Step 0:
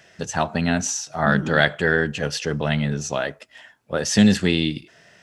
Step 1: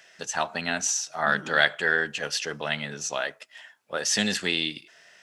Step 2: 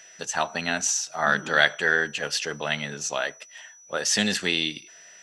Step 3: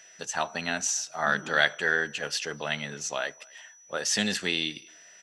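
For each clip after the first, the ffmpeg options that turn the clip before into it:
-af "highpass=f=1.1k:p=1"
-af "aeval=exprs='val(0)+0.00316*sin(2*PI*5900*n/s)':c=same,volume=1.5dB"
-filter_complex "[0:a]asplit=2[a][b];[b]adelay=250,highpass=300,lowpass=3.4k,asoftclip=type=hard:threshold=-13dB,volume=-27dB[c];[a][c]amix=inputs=2:normalize=0,volume=-3.5dB"

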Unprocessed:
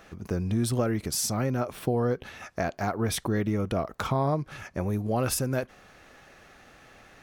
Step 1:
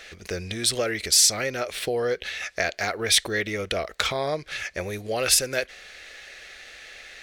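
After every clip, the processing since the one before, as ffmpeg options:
-af "equalizer=f=125:t=o:w=1:g=-12,equalizer=f=250:t=o:w=1:g=-10,equalizer=f=500:t=o:w=1:g=5,equalizer=f=1k:t=o:w=1:g=-10,equalizer=f=2k:t=o:w=1:g=11,equalizer=f=4k:t=o:w=1:g=11,equalizer=f=8k:t=o:w=1:g=7,volume=2.5dB"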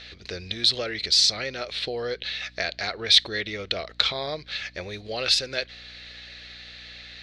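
-af "lowpass=f=4.1k:t=q:w=4.5,aeval=exprs='val(0)+0.00447*(sin(2*PI*60*n/s)+sin(2*PI*2*60*n/s)/2+sin(2*PI*3*60*n/s)/3+sin(2*PI*4*60*n/s)/4+sin(2*PI*5*60*n/s)/5)':c=same,volume=-5dB"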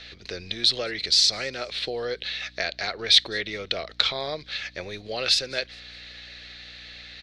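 -filter_complex "[0:a]acrossover=split=190|3500[a][b][c];[a]aeval=exprs='clip(val(0),-1,0.00237)':c=same[d];[c]aecho=1:1:203|406|609:0.0841|0.0303|0.0109[e];[d][b][e]amix=inputs=3:normalize=0"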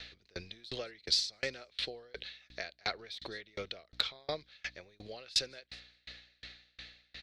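-filter_complex "[0:a]asplit=2[a][b];[b]aeval=exprs='clip(val(0),-1,0.282)':c=same,volume=-3.5dB[c];[a][c]amix=inputs=2:normalize=0,aeval=exprs='val(0)*pow(10,-34*if(lt(mod(2.8*n/s,1),2*abs(2.8)/1000),1-mod(2.8*n/s,1)/(2*abs(2.8)/1000),(mod(2.8*n/s,1)-2*abs(2.8)/1000)/(1-2*abs(2.8)/1000))/20)':c=same,volume=-6dB"

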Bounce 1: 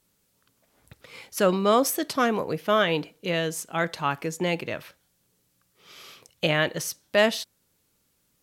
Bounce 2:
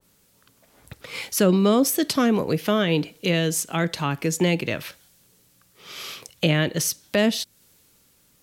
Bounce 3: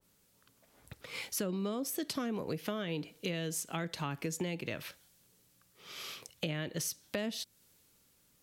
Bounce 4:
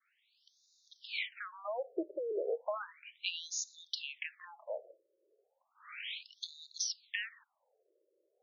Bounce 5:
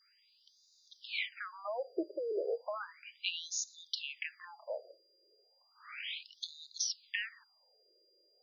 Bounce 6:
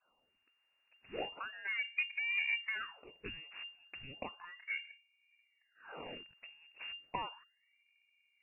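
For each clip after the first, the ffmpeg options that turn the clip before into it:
-filter_complex "[0:a]acrossover=split=390[a][b];[b]acompressor=threshold=-39dB:ratio=3[c];[a][c]amix=inputs=2:normalize=0,adynamicequalizer=threshold=0.00316:dfrequency=1800:dqfactor=0.7:tfrequency=1800:tqfactor=0.7:attack=5:release=100:ratio=0.375:range=3.5:mode=boostabove:tftype=highshelf,volume=8.5dB"
-af "acompressor=threshold=-24dB:ratio=6,volume=-8.5dB"
-af "afftfilt=real='re*between(b*sr/1024,430*pow(5100/430,0.5+0.5*sin(2*PI*0.34*pts/sr))/1.41,430*pow(5100/430,0.5+0.5*sin(2*PI*0.34*pts/sr))*1.41)':imag='im*between(b*sr/1024,430*pow(5100/430,0.5+0.5*sin(2*PI*0.34*pts/sr))/1.41,430*pow(5100/430,0.5+0.5*sin(2*PI*0.34*pts/sr))*1.41)':win_size=1024:overlap=0.75,volume=6dB"
-filter_complex "[0:a]acrossover=split=490|1200[a][b][c];[b]alimiter=level_in=12dB:limit=-24dB:level=0:latency=1:release=174,volume=-12dB[d];[a][d][c]amix=inputs=3:normalize=0,aeval=exprs='val(0)+0.000316*sin(2*PI*4800*n/s)':c=same,volume=1dB"
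-af "aeval=exprs='if(lt(val(0),0),0.447*val(0),val(0))':c=same,lowpass=f=2.4k:t=q:w=0.5098,lowpass=f=2.4k:t=q:w=0.6013,lowpass=f=2.4k:t=q:w=0.9,lowpass=f=2.4k:t=q:w=2.563,afreqshift=-2800,volume=2.5dB"

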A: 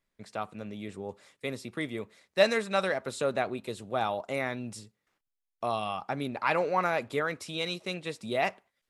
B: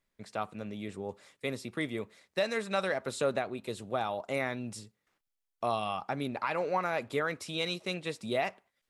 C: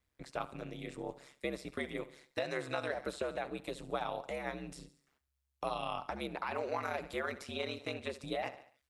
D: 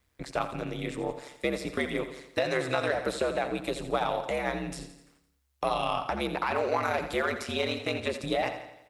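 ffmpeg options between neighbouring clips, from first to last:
-af "alimiter=limit=-19dB:level=0:latency=1:release=339"
-filter_complex "[0:a]aecho=1:1:70|140|210|280:0.141|0.0593|0.0249|0.0105,acrossover=split=370|1600|3300[a][b][c][d];[a]acompressor=threshold=-45dB:ratio=4[e];[b]acompressor=threshold=-35dB:ratio=4[f];[c]acompressor=threshold=-44dB:ratio=4[g];[d]acompressor=threshold=-53dB:ratio=4[h];[e][f][g][h]amix=inputs=4:normalize=0,aeval=exprs='val(0)*sin(2*PI*68*n/s)':c=same,volume=2dB"
-filter_complex "[0:a]asplit=2[a][b];[b]asoftclip=type=hard:threshold=-37dB,volume=-9dB[c];[a][c]amix=inputs=2:normalize=0,aecho=1:1:85|170|255|340|425|510:0.251|0.133|0.0706|0.0374|0.0198|0.0105,volume=7dB"

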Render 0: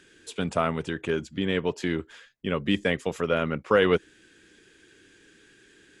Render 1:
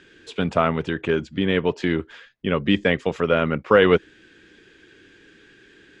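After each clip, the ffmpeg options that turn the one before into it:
-af "lowpass=4.1k,volume=5.5dB"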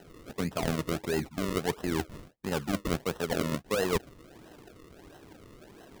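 -af "acrusher=samples=38:mix=1:aa=0.000001:lfo=1:lforange=38:lforate=1.5,areverse,acompressor=threshold=-27dB:ratio=5,areverse"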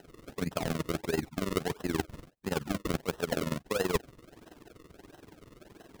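-af "tremolo=f=21:d=0.824,volume=2dB"

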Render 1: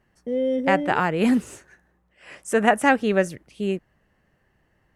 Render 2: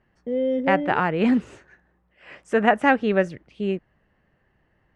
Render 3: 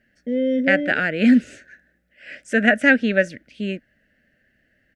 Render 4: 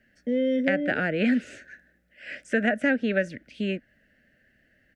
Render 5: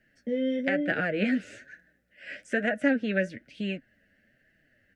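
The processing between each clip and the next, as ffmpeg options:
-af "lowpass=3.5k"
-af "firequalizer=gain_entry='entry(170,0);entry(240,11);entry(380,-2);entry(600,8);entry(1000,-25);entry(1500,12);entry(3000,9);entry(4700,12)':delay=0.05:min_phase=1,volume=-4dB"
-filter_complex "[0:a]acrossover=split=370|1000|3600[a][b][c][d];[a]acompressor=threshold=-27dB:ratio=4[e];[b]acompressor=threshold=-27dB:ratio=4[f];[c]acompressor=threshold=-29dB:ratio=4[g];[d]acompressor=threshold=-52dB:ratio=4[h];[e][f][g][h]amix=inputs=4:normalize=0"
-af "flanger=delay=6:depth=4.9:regen=32:speed=1.1:shape=sinusoidal,volume=1.5dB"

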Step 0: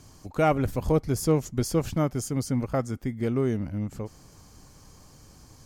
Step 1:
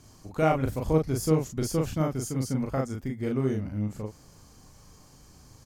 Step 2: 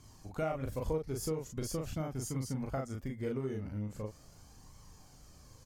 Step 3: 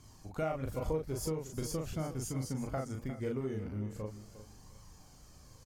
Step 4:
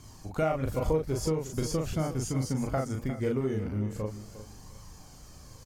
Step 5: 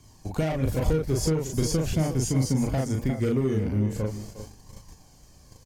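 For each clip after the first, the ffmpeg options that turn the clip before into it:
-filter_complex "[0:a]asplit=2[a][b];[b]adelay=38,volume=-2.5dB[c];[a][c]amix=inputs=2:normalize=0,volume=-3.5dB"
-af "acompressor=threshold=-27dB:ratio=10,flanger=delay=0.9:depth=1.5:regen=55:speed=0.42:shape=triangular"
-af "aecho=1:1:354|708|1062:0.224|0.056|0.014"
-filter_complex "[0:a]acrossover=split=7900[a][b];[b]acompressor=threshold=-55dB:ratio=4:attack=1:release=60[c];[a][c]amix=inputs=2:normalize=0,volume=7dB"
-filter_complex "[0:a]equalizer=f=1.3k:t=o:w=0.23:g=-10.5,agate=range=-10dB:threshold=-45dB:ratio=16:detection=peak,acrossover=split=350|2700[a][b][c];[b]asoftclip=type=tanh:threshold=-36.5dB[d];[a][d][c]amix=inputs=3:normalize=0,volume=6.5dB"

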